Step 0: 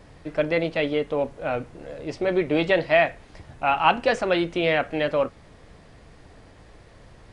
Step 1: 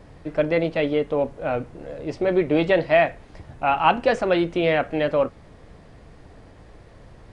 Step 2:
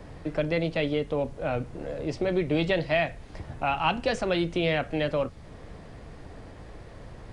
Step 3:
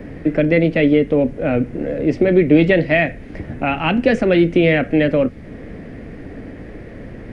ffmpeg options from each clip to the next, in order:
-af "tiltshelf=f=1.4k:g=3"
-filter_complex "[0:a]acrossover=split=170|3000[a][b][c];[b]acompressor=threshold=-35dB:ratio=2[d];[a][d][c]amix=inputs=3:normalize=0,volume=2.5dB"
-af "equalizer=f=250:t=o:w=1:g=11,equalizer=f=500:t=o:w=1:g=4,equalizer=f=1k:t=o:w=1:g=-9,equalizer=f=2k:t=o:w=1:g=9,equalizer=f=4k:t=o:w=1:g=-7,equalizer=f=8k:t=o:w=1:g=-9,volume=7dB"

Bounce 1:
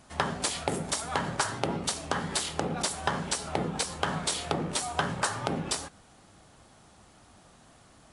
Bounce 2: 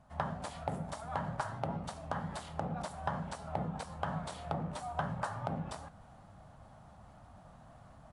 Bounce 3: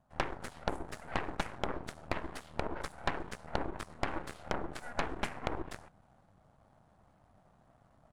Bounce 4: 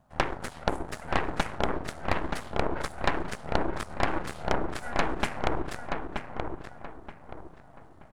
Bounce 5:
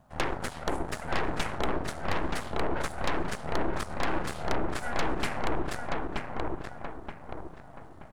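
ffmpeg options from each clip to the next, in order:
-af "firequalizer=gain_entry='entry(150,0);entry(370,-15);entry(620,-1);entry(2300,-14);entry(5500,-19)':delay=0.05:min_phase=1,areverse,acompressor=mode=upward:threshold=-44dB:ratio=2.5,areverse,volume=-2.5dB"
-af "equalizer=f=360:t=o:w=1.8:g=4,aeval=exprs='0.15*(cos(1*acos(clip(val(0)/0.15,-1,1)))-cos(1*PI/2))+0.00376*(cos(3*acos(clip(val(0)/0.15,-1,1)))-cos(3*PI/2))+0.0299*(cos(4*acos(clip(val(0)/0.15,-1,1)))-cos(4*PI/2))+0.0266*(cos(7*acos(clip(val(0)/0.15,-1,1)))-cos(7*PI/2))+0.0237*(cos(8*acos(clip(val(0)/0.15,-1,1)))-cos(8*PI/2))':c=same,volume=-1dB"
-filter_complex "[0:a]asplit=2[a][b];[b]adelay=927,lowpass=f=2.3k:p=1,volume=-4.5dB,asplit=2[c][d];[d]adelay=927,lowpass=f=2.3k:p=1,volume=0.34,asplit=2[e][f];[f]adelay=927,lowpass=f=2.3k:p=1,volume=0.34,asplit=2[g][h];[h]adelay=927,lowpass=f=2.3k:p=1,volume=0.34[i];[a][c][e][g][i]amix=inputs=5:normalize=0,volume=7dB"
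-af "asoftclip=type=tanh:threshold=-22.5dB,volume=4dB"

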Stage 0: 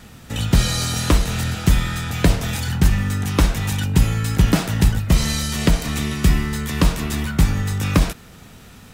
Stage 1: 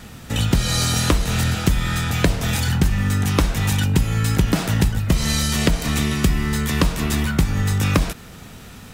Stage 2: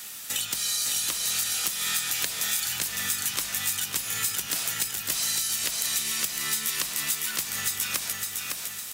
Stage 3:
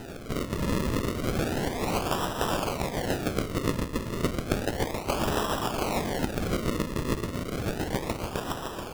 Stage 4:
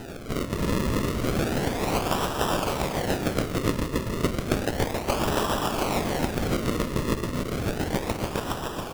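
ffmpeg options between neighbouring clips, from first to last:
-af "acompressor=threshold=-17dB:ratio=6,volume=3.5dB"
-af "aderivative,acompressor=threshold=-35dB:ratio=6,aecho=1:1:557|1114|1671|2228|2785|3342:0.631|0.284|0.128|0.0575|0.0259|0.0116,volume=9dB"
-af "acrusher=samples=39:mix=1:aa=0.000001:lfo=1:lforange=39:lforate=0.32"
-af "aecho=1:1:281:0.422,volume=2dB"

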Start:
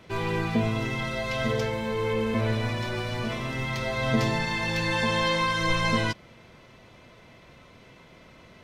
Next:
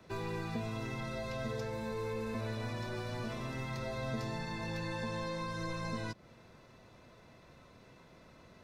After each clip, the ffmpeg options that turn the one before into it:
-filter_complex "[0:a]equalizer=f=2.2k:w=5.2:g=-7.5,bandreject=f=3.1k:w=5.2,acrossover=split=110|610|2500[a][b][c][d];[a]acompressor=threshold=-40dB:ratio=4[e];[b]acompressor=threshold=-33dB:ratio=4[f];[c]acompressor=threshold=-39dB:ratio=4[g];[d]acompressor=threshold=-45dB:ratio=4[h];[e][f][g][h]amix=inputs=4:normalize=0,volume=-6dB"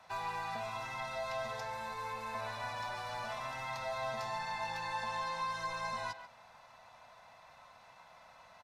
-filter_complex "[0:a]aresample=32000,aresample=44100,lowshelf=f=540:t=q:w=3:g=-13,asplit=2[a][b];[b]adelay=140,highpass=300,lowpass=3.4k,asoftclip=type=hard:threshold=-37.5dB,volume=-9dB[c];[a][c]amix=inputs=2:normalize=0,volume=1dB"

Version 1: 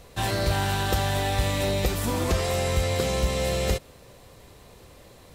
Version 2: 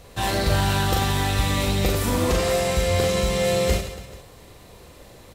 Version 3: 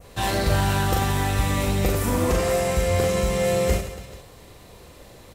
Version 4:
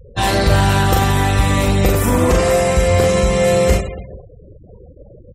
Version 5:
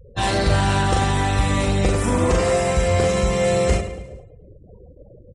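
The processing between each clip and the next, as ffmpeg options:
-af "aecho=1:1:40|96|174.4|284.2|437.8:0.631|0.398|0.251|0.158|0.1,volume=1.5dB"
-af "adynamicequalizer=threshold=0.00562:dfrequency=3900:dqfactor=1.4:tfrequency=3900:tqfactor=1.4:attack=5:release=100:ratio=0.375:range=3.5:mode=cutabove:tftype=bell"
-af "afftfilt=real='re*gte(hypot(re,im),0.0158)':imag='im*gte(hypot(re,im),0.0158)':win_size=1024:overlap=0.75,acontrast=41,volume=2.5dB"
-af "aecho=1:1:106|212|318|424:0.158|0.0792|0.0396|0.0198,aresample=22050,aresample=44100,volume=-4.5dB"

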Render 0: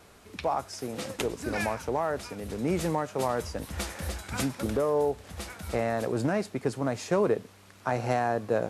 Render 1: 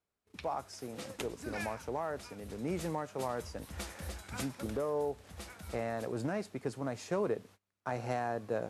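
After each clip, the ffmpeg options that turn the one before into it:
-af "agate=range=-27dB:threshold=-47dB:ratio=16:detection=peak,volume=-8dB"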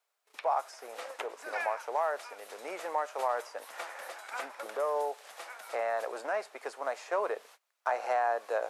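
-filter_complex "[0:a]highpass=f=590:w=0.5412,highpass=f=590:w=1.3066,acrossover=split=2200[a][b];[b]acompressor=threshold=-60dB:ratio=6[c];[a][c]amix=inputs=2:normalize=0,volume=8.5dB"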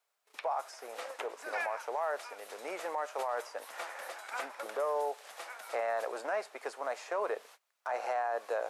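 -af "alimiter=level_in=1dB:limit=-24dB:level=0:latency=1:release=16,volume=-1dB"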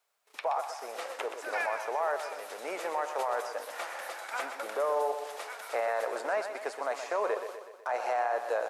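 -af "aecho=1:1:124|248|372|496|620|744:0.355|0.195|0.107|0.059|0.0325|0.0179,volume=3dB"

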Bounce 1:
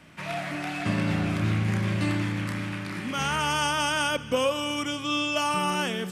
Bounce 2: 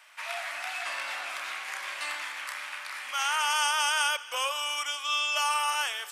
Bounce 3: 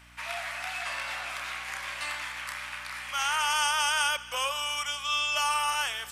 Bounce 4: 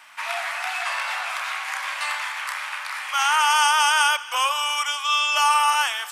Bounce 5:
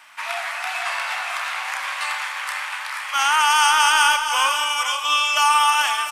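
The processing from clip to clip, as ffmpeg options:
-af "highpass=f=810:w=0.5412,highpass=f=810:w=1.3066,highshelf=f=7.2k:g=5.5"
-af "aeval=exprs='val(0)+0.00158*(sin(2*PI*60*n/s)+sin(2*PI*2*60*n/s)/2+sin(2*PI*3*60*n/s)/3+sin(2*PI*4*60*n/s)/4+sin(2*PI*5*60*n/s)/5)':c=same"
-af "acontrast=45,highpass=f=850:t=q:w=1.7"
-filter_complex "[0:a]aeval=exprs='0.473*(cos(1*acos(clip(val(0)/0.473,-1,1)))-cos(1*PI/2))+0.0119*(cos(7*acos(clip(val(0)/0.473,-1,1)))-cos(7*PI/2))':c=same,asplit=2[a][b];[b]aecho=0:1:451|482|702:0.211|0.355|0.2[c];[a][c]amix=inputs=2:normalize=0,volume=2dB"

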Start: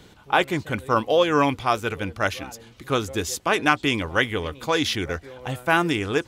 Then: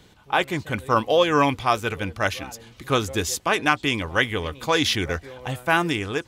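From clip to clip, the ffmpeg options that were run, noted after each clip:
-af "equalizer=f=350:t=o:w=1.8:g=-2.5,bandreject=f=1.4k:w=21,dynaudnorm=f=140:g=5:m=6dB,volume=-2.5dB"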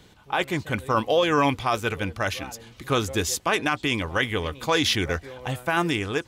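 -af "alimiter=limit=-11.5dB:level=0:latency=1:release=14"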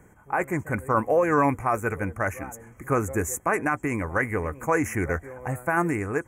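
-af "aeval=exprs='val(0)+0.00447*sin(2*PI*3200*n/s)':c=same,asuperstop=centerf=3900:order=8:qfactor=0.82"

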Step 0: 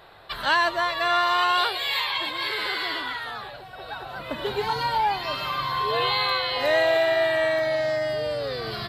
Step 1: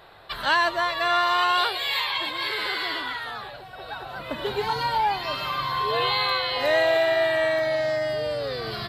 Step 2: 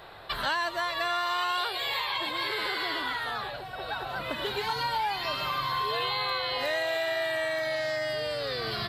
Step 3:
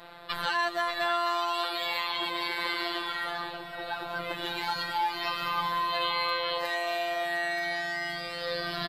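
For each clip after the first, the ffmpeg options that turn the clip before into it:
-af anull
-filter_complex "[0:a]acrossover=split=1200|5800[a][b][c];[a]acompressor=threshold=-36dB:ratio=4[d];[b]acompressor=threshold=-35dB:ratio=4[e];[c]acompressor=threshold=-49dB:ratio=4[f];[d][e][f]amix=inputs=3:normalize=0,volume=2.5dB"
-filter_complex "[0:a]afftfilt=real='hypot(re,im)*cos(PI*b)':imag='0':win_size=1024:overlap=0.75,asplit=2[a][b];[b]adelay=583.1,volume=-10dB,highshelf=f=4k:g=-13.1[c];[a][c]amix=inputs=2:normalize=0,volume=2.5dB"

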